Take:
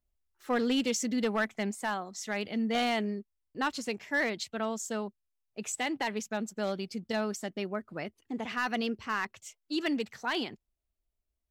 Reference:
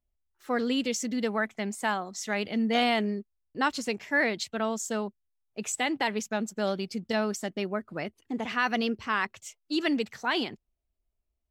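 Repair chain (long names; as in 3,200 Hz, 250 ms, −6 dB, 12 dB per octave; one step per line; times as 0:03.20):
clipped peaks rebuilt −22.5 dBFS
level 0 dB, from 0:01.71 +3.5 dB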